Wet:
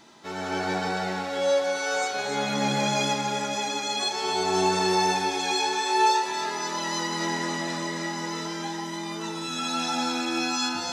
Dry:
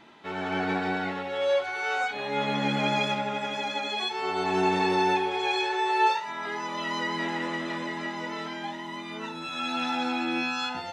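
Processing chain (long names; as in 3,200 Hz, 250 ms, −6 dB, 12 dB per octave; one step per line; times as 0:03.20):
high shelf with overshoot 4,000 Hz +11.5 dB, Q 1.5
delay that swaps between a low-pass and a high-pass 138 ms, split 2,200 Hz, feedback 74%, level −4 dB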